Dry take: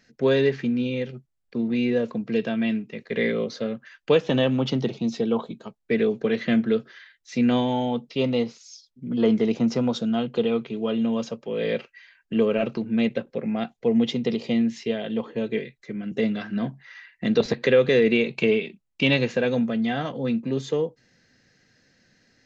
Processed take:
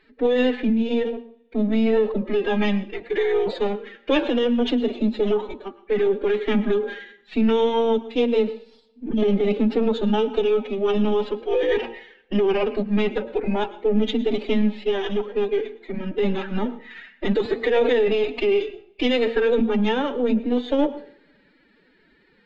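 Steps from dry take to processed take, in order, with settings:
gain on one half-wave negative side −3 dB
Butterworth low-pass 3,900 Hz 48 dB per octave
parametric band 500 Hz +6 dB 0.36 octaves
hum removal 63.03 Hz, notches 23
brickwall limiter −16 dBFS, peak gain reduction 11.5 dB
phase-vocoder pitch shift with formants kept +10.5 semitones
convolution reverb, pre-delay 101 ms, DRR 16 dB
level +5.5 dB

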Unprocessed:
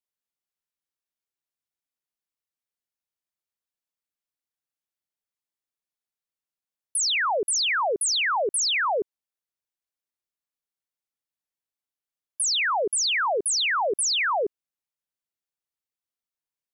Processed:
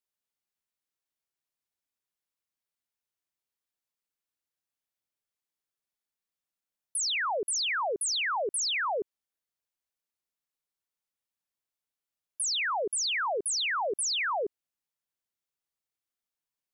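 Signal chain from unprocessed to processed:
brickwall limiter −26.5 dBFS, peak gain reduction 5.5 dB

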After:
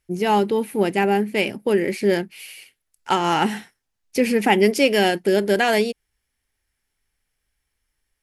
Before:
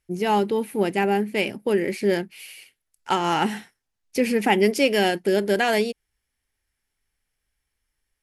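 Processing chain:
level +2.5 dB

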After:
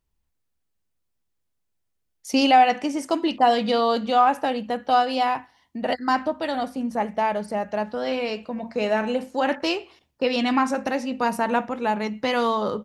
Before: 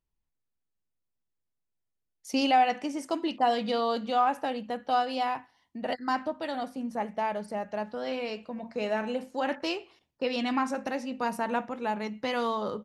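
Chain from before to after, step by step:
parametric band 68 Hz +8.5 dB 0.32 octaves
level +7 dB

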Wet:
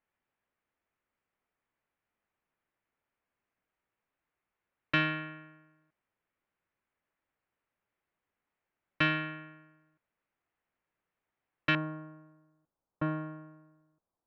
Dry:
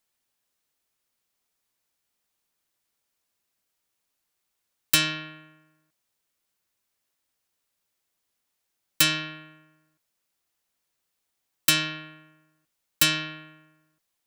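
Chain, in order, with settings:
low-pass filter 2,300 Hz 24 dB per octave, from 0:11.75 1,100 Hz

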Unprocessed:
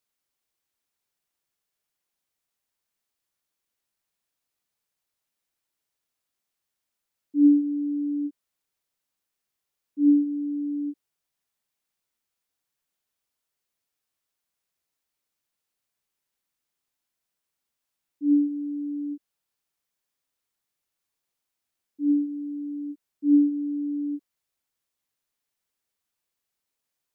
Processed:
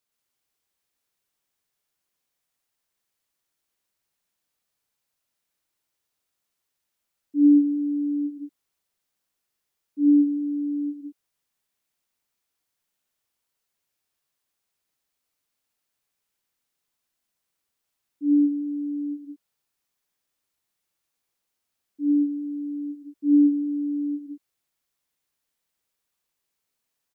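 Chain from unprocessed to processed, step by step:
loudspeakers that aren't time-aligned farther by 40 metres −2 dB, 63 metres −5 dB

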